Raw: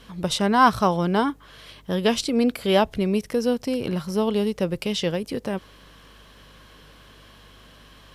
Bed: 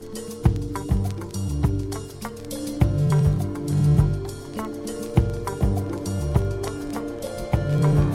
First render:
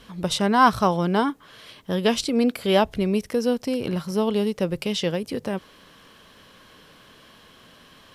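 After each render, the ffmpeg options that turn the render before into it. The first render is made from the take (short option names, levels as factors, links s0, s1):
-af "bandreject=f=50:t=h:w=4,bandreject=f=100:t=h:w=4,bandreject=f=150:t=h:w=4"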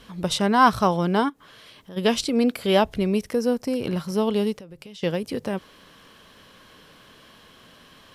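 -filter_complex "[0:a]asplit=3[s0][s1][s2];[s0]afade=t=out:st=1.28:d=0.02[s3];[s1]acompressor=threshold=0.00562:ratio=2.5:attack=3.2:release=140:knee=1:detection=peak,afade=t=in:st=1.28:d=0.02,afade=t=out:st=1.96:d=0.02[s4];[s2]afade=t=in:st=1.96:d=0.02[s5];[s3][s4][s5]amix=inputs=3:normalize=0,asettb=1/sr,asplit=3[s6][s7][s8];[s6]atrim=end=3.344[s9];[s7]atrim=start=3.34:end=3.76,asetpts=PTS-STARTPTS,afade=t=in:d=0.004:c=qsin,afade=t=out:st=0.416:d=0.004:c=qsin,equalizer=f=3300:w=1.8:g=-7.5[s10];[s8]atrim=start=3.756[s11];[s9][s10]acrossfade=d=0.004:c1=hsin:c2=qsin[s12];[s12][s11]acrossfade=d=0.004:c1=qsin:c2=hsin,asettb=1/sr,asplit=3[s13][s14][s15];[s13]atrim=end=4.564[s16];[s14]atrim=start=4.56:end=5.03,asetpts=PTS-STARTPTS,afade=t=in:d=0.004:c=qsin,afade=t=out:st=0.466:d=0.004:c=qsin,acompressor=threshold=0.0112:ratio=8:attack=3.2:release=140:knee=1:detection=peak[s17];[s15]atrim=start=5.026[s18];[s16][s17]acrossfade=d=0.004:c1=hsin:c2=qsin[s19];[s19][s18]acrossfade=d=0.004:c1=qsin:c2=hsin"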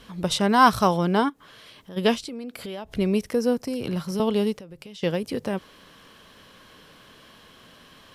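-filter_complex "[0:a]asettb=1/sr,asplit=3[s0][s1][s2];[s0]atrim=end=0.494[s3];[s1]atrim=start=0.49:end=0.98,asetpts=PTS-STARTPTS,afade=t=in:d=0.004:c=qsin,afade=t=out:st=0.486:d=0.004:c=qsin,highshelf=f=4700:g=6.5[s4];[s2]atrim=start=0.976[s5];[s3][s4]acrossfade=d=0.004:c1=hsin:c2=qsin[s6];[s6][s5]acrossfade=d=0.004:c1=qsin:c2=hsin,asettb=1/sr,asplit=3[s7][s8][s9];[s7]atrim=end=2.154[s10];[s8]atrim=start=2.15:end=2.92,asetpts=PTS-STARTPTS,afade=t=in:d=0.004:c=qsin,afade=t=out:st=0.766:d=0.004:c=qsin,acompressor=threshold=0.0251:ratio=8:attack=3.2:release=140:knee=1:detection=peak[s11];[s9]atrim=start=2.916[s12];[s10][s11]acrossfade=d=0.004:c1=hsin:c2=qsin[s13];[s13][s12]acrossfade=d=0.004:c1=qsin:c2=hsin,asettb=1/sr,asplit=3[s14][s15][s16];[s14]atrim=end=3.574[s17];[s15]atrim=start=3.57:end=4.2,asetpts=PTS-STARTPTS,afade=t=in:d=0.004:c=qsin,afade=t=out:st=0.626:d=0.004:c=qsin,acrossover=split=210|3000[s18][s19][s20];[s19]acompressor=threshold=0.0398:ratio=6:attack=3.2:release=140:knee=2.83:detection=peak[s21];[s18][s21][s20]amix=inputs=3:normalize=0[s22];[s16]atrim=start=4.196[s23];[s17][s22]acrossfade=d=0.004:c1=hsin:c2=qsin[s24];[s24][s23]acrossfade=d=0.004:c1=qsin:c2=hsin"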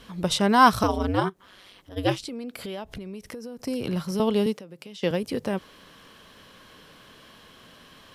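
-filter_complex "[0:a]asettb=1/sr,asplit=3[s0][s1][s2];[s0]atrim=end=0.834[s3];[s1]atrim=start=0.83:end=2.21,asetpts=PTS-STARTPTS,afade=t=in:d=0.004:c=qsin,afade=t=out:st=1.376:d=0.004:c=qsin,aeval=exprs='val(0)*sin(2*PI*99*n/s)':c=same[s4];[s2]atrim=start=2.206[s5];[s3][s4]acrossfade=d=0.004:c1=hsin:c2=qsin[s6];[s6][s5]acrossfade=d=0.004:c1=qsin:c2=hsin,asettb=1/sr,asplit=3[s7][s8][s9];[s7]atrim=end=2.904[s10];[s8]atrim=start=2.9:end=3.59,asetpts=PTS-STARTPTS,afade=t=in:d=0.004:c=qsin,afade=t=out:st=0.686:d=0.004:c=qsin,acompressor=threshold=0.02:ratio=10:attack=3.2:release=140:knee=1:detection=peak[s11];[s9]atrim=start=3.586[s12];[s10][s11]acrossfade=d=0.004:c1=hsin:c2=qsin[s13];[s13][s12]acrossfade=d=0.004:c1=qsin:c2=hsin,asettb=1/sr,asplit=3[s14][s15][s16];[s14]atrim=end=4.464[s17];[s15]atrim=start=4.46:end=5.11,asetpts=PTS-STARTPTS,afade=t=in:d=0.004:c=qsin,afade=t=out:st=0.646:d=0.004:c=qsin,highpass=f=160:w=0.5412,highpass=f=160:w=1.3066[s18];[s16]atrim=start=5.106[s19];[s17][s18]acrossfade=d=0.004:c1=hsin:c2=qsin[s20];[s20][s19]acrossfade=d=0.004:c1=qsin:c2=hsin"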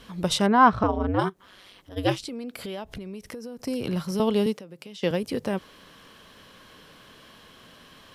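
-filter_complex "[0:a]asplit=3[s0][s1][s2];[s0]afade=t=out:st=0.46:d=0.02[s3];[s1]lowpass=1800,afade=t=in:st=0.46:d=0.02,afade=t=out:st=1.18:d=0.02[s4];[s2]afade=t=in:st=1.18:d=0.02[s5];[s3][s4][s5]amix=inputs=3:normalize=0"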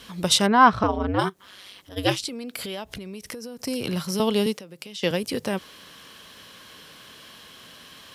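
-af "highpass=50,highshelf=f=2000:g=9"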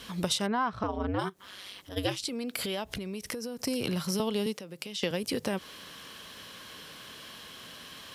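-af "acompressor=threshold=0.0447:ratio=6"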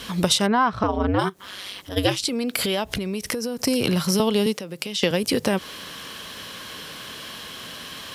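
-af "volume=2.99"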